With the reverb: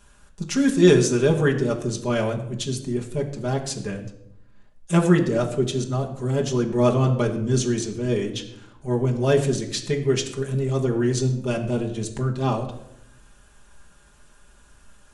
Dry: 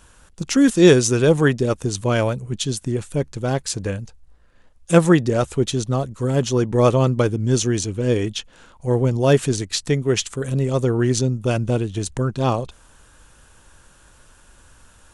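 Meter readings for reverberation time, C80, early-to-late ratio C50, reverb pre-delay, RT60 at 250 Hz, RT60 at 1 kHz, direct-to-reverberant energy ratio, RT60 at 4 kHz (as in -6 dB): 0.80 s, 12.5 dB, 10.0 dB, 5 ms, 1.1 s, 0.70 s, -0.5 dB, 0.55 s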